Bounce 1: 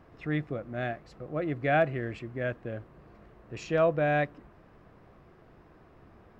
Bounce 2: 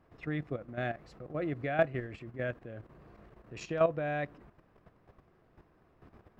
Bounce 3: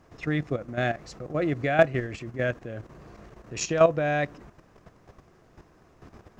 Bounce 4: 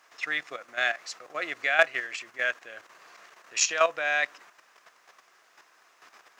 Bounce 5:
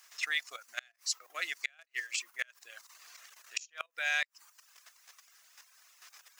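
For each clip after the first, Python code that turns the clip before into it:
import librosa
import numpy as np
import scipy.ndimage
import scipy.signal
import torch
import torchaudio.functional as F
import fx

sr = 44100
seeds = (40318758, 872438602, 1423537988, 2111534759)

y1 = fx.level_steps(x, sr, step_db=11)
y2 = fx.peak_eq(y1, sr, hz=6400.0, db=13.5, octaves=0.92)
y2 = F.gain(torch.from_numpy(y2), 8.0).numpy()
y3 = scipy.signal.sosfilt(scipy.signal.butter(2, 1400.0, 'highpass', fs=sr, output='sos'), y2)
y3 = F.gain(torch.from_numpy(y3), 7.5).numpy()
y4 = np.diff(y3, prepend=0.0)
y4 = fx.dereverb_blind(y4, sr, rt60_s=0.63)
y4 = fx.gate_flip(y4, sr, shuts_db=-26.0, range_db=-33)
y4 = F.gain(torch.from_numpy(y4), 8.5).numpy()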